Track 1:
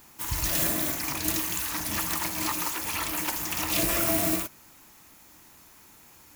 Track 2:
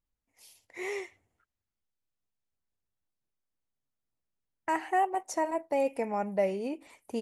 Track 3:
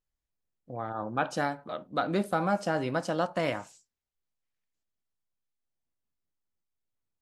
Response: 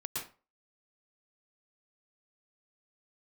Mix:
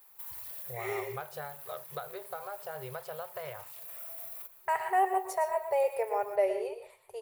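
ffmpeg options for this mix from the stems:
-filter_complex "[0:a]highpass=frequency=300:poles=1,acompressor=threshold=-31dB:ratio=6,alimiter=level_in=5dB:limit=-24dB:level=0:latency=1:release=49,volume=-5dB,volume=-11.5dB,asplit=2[link_01][link_02];[link_02]volume=-13.5dB[link_03];[1:a]dynaudnorm=framelen=150:gausssize=9:maxgain=6dB,volume=-8dB,asplit=2[link_04][link_05];[link_05]volume=-4dB[link_06];[2:a]acompressor=threshold=-33dB:ratio=12,volume=-1.5dB,asplit=2[link_07][link_08];[link_08]apad=whole_len=280299[link_09];[link_01][link_09]sidechaincompress=threshold=-38dB:ratio=16:attack=5.6:release=849[link_10];[3:a]atrim=start_sample=2205[link_11];[link_03][link_06]amix=inputs=2:normalize=0[link_12];[link_12][link_11]afir=irnorm=-1:irlink=0[link_13];[link_10][link_04][link_07][link_13]amix=inputs=4:normalize=0,afftfilt=real='re*(1-between(b*sr/4096,160,370))':imag='im*(1-between(b*sr/4096,160,370))':win_size=4096:overlap=0.75,equalizer=frequency=5600:width=0.74:gain=-9.5,aexciter=amount=1.3:drive=6.7:freq=3600"

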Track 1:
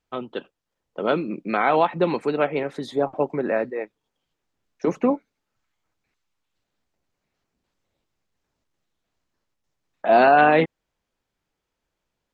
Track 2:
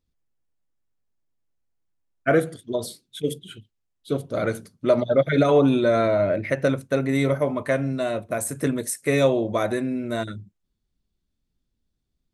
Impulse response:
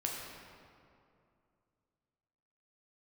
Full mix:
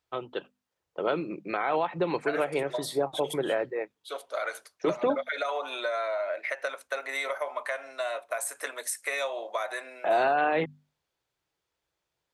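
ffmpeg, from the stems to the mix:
-filter_complex "[0:a]equalizer=frequency=230:width=4.2:gain=-14.5,volume=-2.5dB[link_01];[1:a]highpass=frequency=700:width=0.5412,highpass=frequency=700:width=1.3066,highshelf=frequency=4800:gain=-5.5,acompressor=threshold=-30dB:ratio=6,volume=2.5dB[link_02];[link_01][link_02]amix=inputs=2:normalize=0,highpass=60,bandreject=frequency=50:width_type=h:width=6,bandreject=frequency=100:width_type=h:width=6,bandreject=frequency=150:width_type=h:width=6,bandreject=frequency=200:width_type=h:width=6,bandreject=frequency=250:width_type=h:width=6,alimiter=limit=-16.5dB:level=0:latency=1:release=113"

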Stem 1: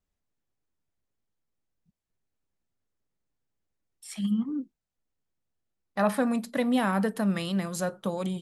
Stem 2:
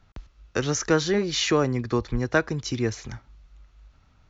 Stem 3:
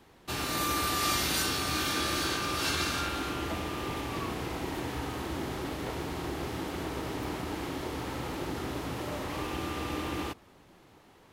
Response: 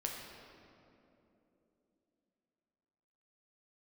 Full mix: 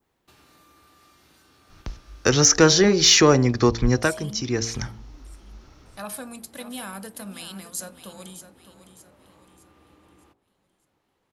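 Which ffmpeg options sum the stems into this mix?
-filter_complex "[0:a]bandreject=frequency=1900:width=6.6,crystalizer=i=7.5:c=0,volume=-13dB,asplit=3[link_01][link_02][link_03];[link_02]volume=-12dB[link_04];[1:a]equalizer=frequency=5500:width_type=o:width=0.58:gain=9,acontrast=88,adelay=1700,volume=0dB[link_05];[2:a]acompressor=threshold=-38dB:ratio=6,adynamicequalizer=threshold=0.00141:dfrequency=1900:dqfactor=0.7:tfrequency=1900:tqfactor=0.7:attack=5:release=100:ratio=0.375:range=2.5:mode=cutabove:tftype=highshelf,volume=-15dB[link_06];[link_03]apad=whole_len=264445[link_07];[link_05][link_07]sidechaincompress=threshold=-44dB:ratio=8:attack=27:release=483[link_08];[link_04]aecho=0:1:610|1220|1830|2440|3050|3660:1|0.4|0.16|0.064|0.0256|0.0102[link_09];[link_01][link_08][link_06][link_09]amix=inputs=4:normalize=0,bandreject=frequency=57.41:width_type=h:width=4,bandreject=frequency=114.82:width_type=h:width=4,bandreject=frequency=172.23:width_type=h:width=4,bandreject=frequency=229.64:width_type=h:width=4,bandreject=frequency=287.05:width_type=h:width=4,bandreject=frequency=344.46:width_type=h:width=4,bandreject=frequency=401.87:width_type=h:width=4,bandreject=frequency=459.28:width_type=h:width=4,bandreject=frequency=516.69:width_type=h:width=4,bandreject=frequency=574.1:width_type=h:width=4,bandreject=frequency=631.51:width_type=h:width=4,bandreject=frequency=688.92:width_type=h:width=4,bandreject=frequency=746.33:width_type=h:width=4,bandreject=frequency=803.74:width_type=h:width=4,bandreject=frequency=861.15:width_type=h:width=4,bandreject=frequency=918.56:width_type=h:width=4,bandreject=frequency=975.97:width_type=h:width=4"

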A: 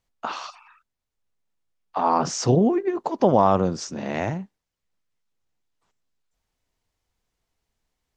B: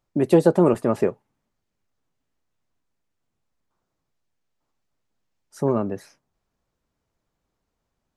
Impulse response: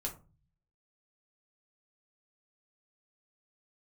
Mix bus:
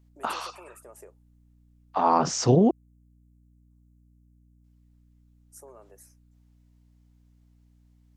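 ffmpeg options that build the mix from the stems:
-filter_complex "[0:a]volume=-0.5dB,asplit=3[link_01][link_02][link_03];[link_01]atrim=end=2.71,asetpts=PTS-STARTPTS,afade=type=out:start_time=2.706:duration=0.004:curve=hsin[link_04];[link_02]atrim=start=2.71:end=4.64,asetpts=PTS-STARTPTS,volume=0[link_05];[link_03]atrim=start=4.64,asetpts=PTS-STARTPTS,afade=type=in:duration=0.004:curve=hsin[link_06];[link_04][link_05][link_06]concat=n=3:v=0:a=1[link_07];[1:a]highpass=frequency=420:width=0.5412,highpass=frequency=420:width=1.3066,acompressor=threshold=-25dB:ratio=6,aexciter=amount=5.4:drive=9.1:freq=6100,volume=-20dB[link_08];[link_07][link_08]amix=inputs=2:normalize=0,aeval=exprs='val(0)+0.00126*(sin(2*PI*60*n/s)+sin(2*PI*2*60*n/s)/2+sin(2*PI*3*60*n/s)/3+sin(2*PI*4*60*n/s)/4+sin(2*PI*5*60*n/s)/5)':channel_layout=same"

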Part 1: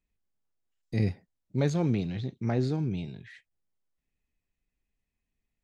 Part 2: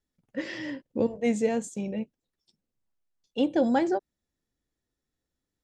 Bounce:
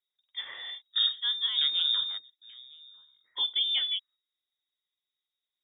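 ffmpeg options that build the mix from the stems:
ffmpeg -i stem1.wav -i stem2.wav -filter_complex "[0:a]volume=-1.5dB[link_01];[1:a]volume=-5dB,asplit=2[link_02][link_03];[link_03]apad=whole_len=248318[link_04];[link_01][link_04]sidechaingate=range=-21dB:threshold=-54dB:ratio=16:detection=peak[link_05];[link_05][link_02]amix=inputs=2:normalize=0,lowpass=frequency=3200:width_type=q:width=0.5098,lowpass=frequency=3200:width_type=q:width=0.6013,lowpass=frequency=3200:width_type=q:width=0.9,lowpass=frequency=3200:width_type=q:width=2.563,afreqshift=-3800" out.wav

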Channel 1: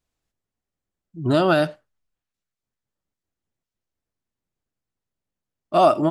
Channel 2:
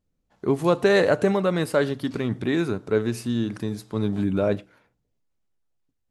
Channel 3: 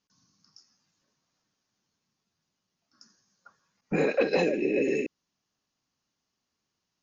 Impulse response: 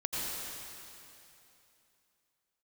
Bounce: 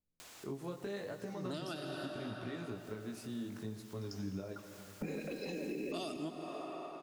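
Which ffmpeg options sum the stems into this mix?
-filter_complex "[0:a]highpass=frequency=760:poles=1,acompressor=mode=upward:threshold=-28dB:ratio=2.5,adelay=200,volume=-2.5dB,asplit=2[link_01][link_02];[link_02]volume=-15.5dB[link_03];[1:a]acompressor=threshold=-24dB:ratio=6,flanger=delay=16.5:depth=5.8:speed=0.76,volume=-11.5dB,asplit=3[link_04][link_05][link_06];[link_05]volume=-15.5dB[link_07];[2:a]acompressor=threshold=-35dB:ratio=3,adelay=1100,volume=1.5dB,asplit=2[link_08][link_09];[link_09]volume=-10dB[link_10];[link_06]apad=whole_len=278001[link_11];[link_01][link_11]sidechaincompress=threshold=-52dB:ratio=8:attack=9.9:release=219[link_12];[3:a]atrim=start_sample=2205[link_13];[link_03][link_07][link_10]amix=inputs=3:normalize=0[link_14];[link_14][link_13]afir=irnorm=-1:irlink=0[link_15];[link_12][link_04][link_08][link_15]amix=inputs=4:normalize=0,acrossover=split=330|3000[link_16][link_17][link_18];[link_17]acompressor=threshold=-42dB:ratio=6[link_19];[link_16][link_19][link_18]amix=inputs=3:normalize=0,alimiter=level_in=7dB:limit=-24dB:level=0:latency=1:release=270,volume=-7dB"

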